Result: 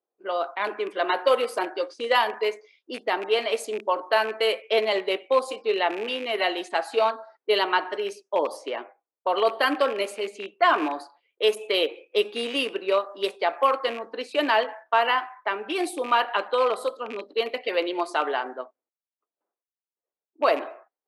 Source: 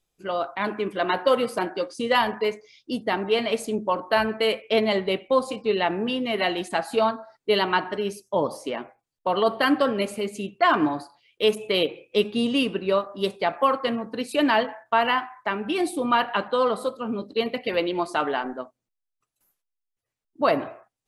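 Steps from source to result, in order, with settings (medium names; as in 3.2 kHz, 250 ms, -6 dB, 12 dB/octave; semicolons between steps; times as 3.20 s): rattle on loud lows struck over -32 dBFS, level -26 dBFS; level-controlled noise filter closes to 800 Hz, open at -22 dBFS; high-pass 350 Hz 24 dB/octave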